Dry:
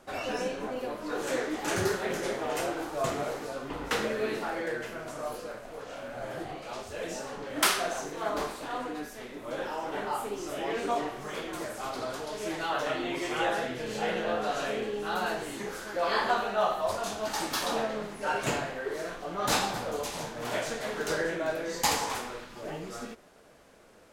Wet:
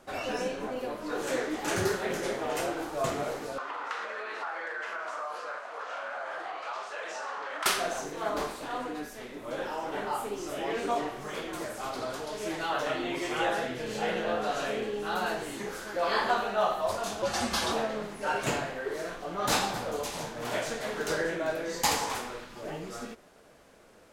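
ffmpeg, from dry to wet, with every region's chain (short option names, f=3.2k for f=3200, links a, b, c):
-filter_complex "[0:a]asettb=1/sr,asplit=3[a][b][c];[a]atrim=end=3.584[d];[b]atrim=start=3.58:end=7.66,asetpts=PTS-STARTPTS,afade=t=in:d=0.004:c=qsin,afade=t=out:st=4.076:d=0.004:c=qsin,equalizer=f=1.2k:w=0.97:g=11.5,acompressor=threshold=-30dB:ratio=10:attack=3.2:release=140:knee=1:detection=peak,highpass=630,lowpass=6.6k[e];[c]atrim=start=7.656[f];[d][e]acrossfade=d=0.004:c1=hsin:c2=qsin[g];[g][f]acrossfade=d=0.004:c1=qsin:c2=hsin,asettb=1/sr,asplit=3[h][i][j];[h]atrim=end=17.224[k];[i]atrim=start=17.22:end=17.72,asetpts=PTS-STARTPTS,afade=t=in:d=0.004:c=qsin,afade=t=out:st=0.496:d=0.004:c=qsin,lowpass=10k,aecho=1:1:6.5:0.79,atrim=end_sample=22050,afreqshift=-87[l];[j]atrim=start=17.716[m];[k][l]acrossfade=d=0.004:c1=hsin:c2=qsin[n];[n][m]acrossfade=d=0.004:c1=qsin:c2=hsin"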